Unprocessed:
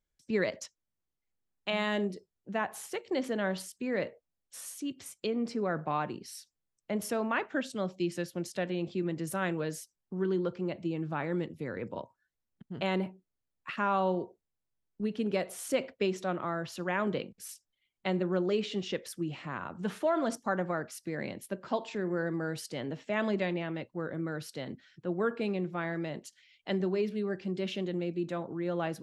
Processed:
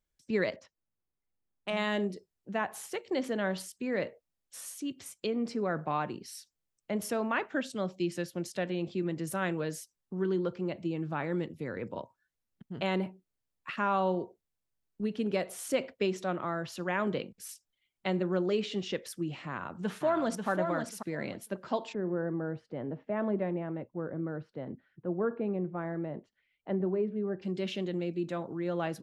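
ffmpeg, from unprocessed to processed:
-filter_complex "[0:a]asettb=1/sr,asplit=3[s0][s1][s2];[s0]atrim=end=0.564[s3];[s1]atrim=start=0.56:end=1.77,asetpts=PTS-STARTPTS,afade=t=in:d=0.004:c=qsin,afade=t=out:st=1.206:d=0.004:c=qsin,adynamicsmooth=sensitivity=1:basefreq=2200[s4];[s2]atrim=start=1.766[s5];[s3][s4]acrossfade=d=0.004:c1=hsin:c2=qsin[s6];[s6][s5]acrossfade=d=0.004:c1=qsin:c2=hsin,asplit=2[s7][s8];[s8]afade=t=in:st=19.47:d=0.01,afade=t=out:st=20.48:d=0.01,aecho=0:1:540|1080|1620:0.530884|0.0796327|0.0119449[s9];[s7][s9]amix=inputs=2:normalize=0,asplit=3[s10][s11][s12];[s10]afade=t=out:st=21.92:d=0.02[s13];[s11]lowpass=1100,afade=t=in:st=21.92:d=0.02,afade=t=out:st=27.41:d=0.02[s14];[s12]afade=t=in:st=27.41:d=0.02[s15];[s13][s14][s15]amix=inputs=3:normalize=0"

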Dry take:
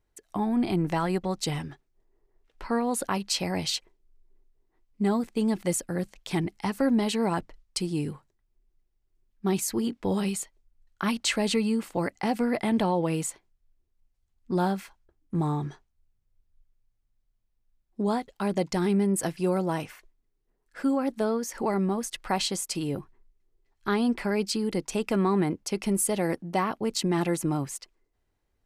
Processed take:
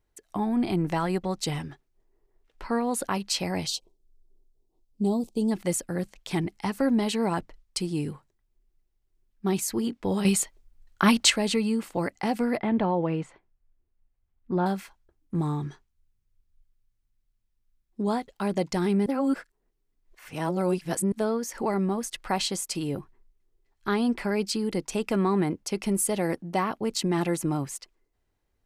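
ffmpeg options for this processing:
-filter_complex "[0:a]asplit=3[s0][s1][s2];[s0]afade=t=out:st=3.66:d=0.02[s3];[s1]asuperstop=centerf=1700:order=4:qfactor=0.59,afade=t=in:st=3.66:d=0.02,afade=t=out:st=5.5:d=0.02[s4];[s2]afade=t=in:st=5.5:d=0.02[s5];[s3][s4][s5]amix=inputs=3:normalize=0,asettb=1/sr,asplit=3[s6][s7][s8];[s6]atrim=end=12.584[s9];[s7]atrim=start=12.58:end=14.66,asetpts=PTS-STARTPTS,afade=t=in:d=0.004:c=qsin,afade=t=out:st=2.076:d=0.004:c=qsin,lowpass=2200[s10];[s8]atrim=start=14.656[s11];[s9][s10]acrossfade=d=0.004:c1=hsin:c2=qsin[s12];[s12][s11]acrossfade=d=0.004:c1=qsin:c2=hsin,asettb=1/sr,asplit=3[s13][s14][s15];[s13]atrim=end=15.414[s16];[s14]atrim=start=15.41:end=18.07,asetpts=PTS-STARTPTS,afade=t=in:d=0.004:c=qsin,afade=t=out:st=2.656:d=0.004:c=qsin,equalizer=f=660:w=1.5:g=-6[s17];[s15]atrim=start=18.066[s18];[s16][s17]acrossfade=d=0.004:c1=hsin:c2=qsin[s19];[s19][s18]acrossfade=d=0.004:c1=qsin:c2=hsin,asplit=5[s20][s21][s22][s23][s24];[s20]atrim=end=10.252[s25];[s21]atrim=start=10.248:end=11.302,asetpts=PTS-STARTPTS,volume=2.37[s26];[s22]atrim=start=11.298:end=19.062[s27];[s23]atrim=start=19.058:end=21.122,asetpts=PTS-STARTPTS,areverse[s28];[s24]atrim=start=21.118[s29];[s25][s26]acrossfade=d=0.004:c1=hsin:c2=hsin[s30];[s30][s27]acrossfade=d=0.004:c1=hsin:c2=hsin[s31];[s31][s28]acrossfade=d=0.004:c1=hsin:c2=hsin[s32];[s32][s29]acrossfade=d=0.004:c1=hsin:c2=hsin"

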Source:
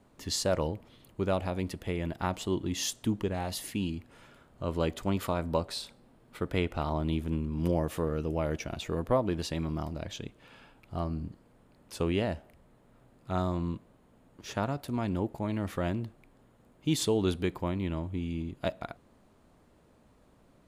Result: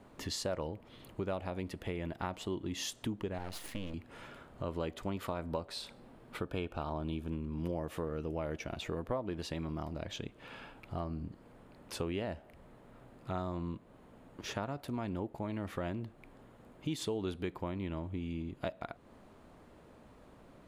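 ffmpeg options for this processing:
-filter_complex "[0:a]asettb=1/sr,asplit=3[s0][s1][s2];[s0]atrim=end=3.384[s3];[s1]atrim=start=3.38:end=3.94,asetpts=PTS-STARTPTS,afade=t=in:d=0.004:c=qsin,afade=t=out:st=0.556:d=0.004:c=qsin,aeval=exprs='max(val(0),0)':c=same[s4];[s2]atrim=start=3.936[s5];[s3][s4]acrossfade=d=0.004:c1=hsin:c2=qsin[s6];[s6][s5]acrossfade=d=0.004:c1=qsin:c2=hsin,asettb=1/sr,asplit=3[s7][s8][s9];[s7]atrim=end=6.384[s10];[s8]atrim=start=6.38:end=7.29,asetpts=PTS-STARTPTS,afade=t=in:d=0.004:c=qsin,afade=t=out:st=0.906:d=0.004:c=qsin,asuperstop=centerf=2000:order=8:qfactor=6.2[s11];[s9]atrim=start=7.286[s12];[s10][s11]acrossfade=d=0.004:c1=hsin:c2=qsin[s13];[s13][s12]acrossfade=d=0.004:c1=qsin:c2=hsin,bass=f=250:g=-3,treble=f=4000:g=-6,acompressor=threshold=0.00501:ratio=2.5,volume=2"

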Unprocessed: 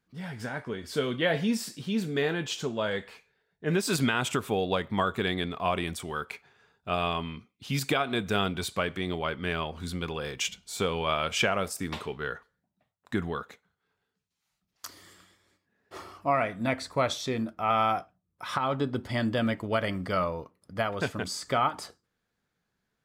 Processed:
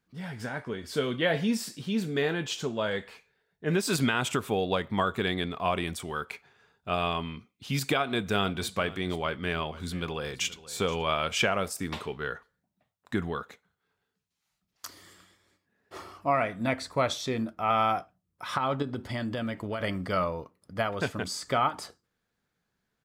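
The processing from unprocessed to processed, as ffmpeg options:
-filter_complex "[0:a]asplit=3[s0][s1][s2];[s0]afade=t=out:st=8.42:d=0.02[s3];[s1]aecho=1:1:476:0.133,afade=t=in:st=8.42:d=0.02,afade=t=out:st=11.07:d=0.02[s4];[s2]afade=t=in:st=11.07:d=0.02[s5];[s3][s4][s5]amix=inputs=3:normalize=0,asettb=1/sr,asplit=3[s6][s7][s8];[s6]atrim=end=18.824[s9];[s7]atrim=start=18.82:end=19.8,asetpts=PTS-STARTPTS,afade=t=in:d=0.004:c=qsin,afade=t=out:st=0.976:d=0.004:c=qsin,acompressor=threshold=0.0355:ratio=4:attack=3.2:release=140:knee=1:detection=peak[s10];[s8]atrim=start=19.796[s11];[s9][s10]acrossfade=d=0.004:c1=hsin:c2=qsin[s12];[s12][s11]acrossfade=d=0.004:c1=qsin:c2=hsin"

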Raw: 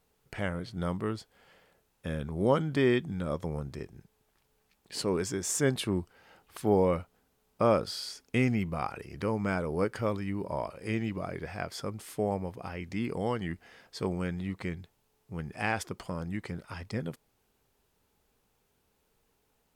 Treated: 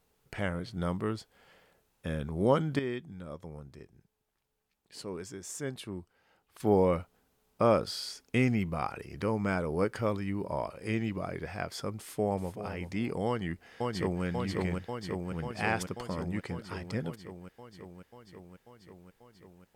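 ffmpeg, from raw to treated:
-filter_complex "[0:a]asplit=2[s0][s1];[s1]afade=t=in:st=11.97:d=0.01,afade=t=out:st=12.58:d=0.01,aecho=0:1:380|760|1140:0.281838|0.0563677|0.0112735[s2];[s0][s2]amix=inputs=2:normalize=0,asplit=2[s3][s4];[s4]afade=t=in:st=13.26:d=0.01,afade=t=out:st=14.24:d=0.01,aecho=0:1:540|1080|1620|2160|2700|3240|3780|4320|4860|5400|5940|6480:0.841395|0.631046|0.473285|0.354964|0.266223|0.199667|0.14975|0.112313|0.0842345|0.0631759|0.0473819|0.0355364[s5];[s3][s5]amix=inputs=2:normalize=0,asplit=3[s6][s7][s8];[s6]atrim=end=2.792[s9];[s7]atrim=start=2.788:end=6.602,asetpts=PTS-STARTPTS,volume=0.316[s10];[s8]atrim=start=6.598[s11];[s9][s10]acrossfade=d=0.004:c1=hsin:c2=hsin[s12];[s12][s11]acrossfade=d=0.004:c1=hsin:c2=hsin"

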